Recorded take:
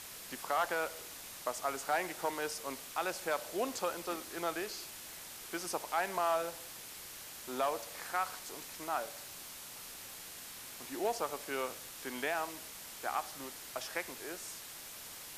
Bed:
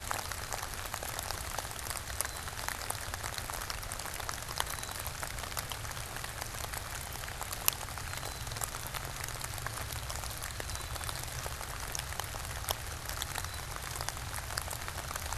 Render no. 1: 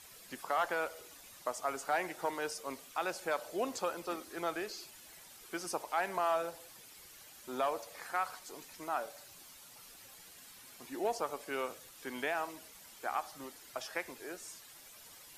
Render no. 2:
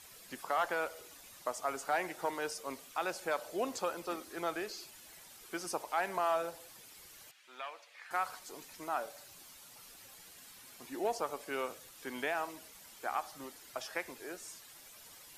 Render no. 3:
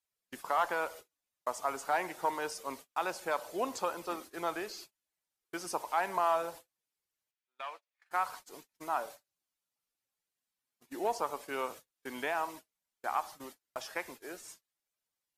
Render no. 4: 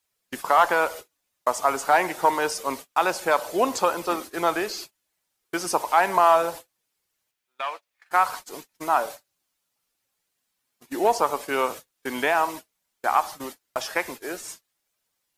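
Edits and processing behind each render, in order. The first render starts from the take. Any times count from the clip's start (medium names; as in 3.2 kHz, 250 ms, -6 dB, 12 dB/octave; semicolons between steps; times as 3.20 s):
noise reduction 10 dB, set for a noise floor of -49 dBFS
7.31–8.11 s: band-pass filter 2.4 kHz, Q 1.5
gate -48 dBFS, range -36 dB; dynamic bell 970 Hz, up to +7 dB, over -51 dBFS, Q 3.1
trim +12 dB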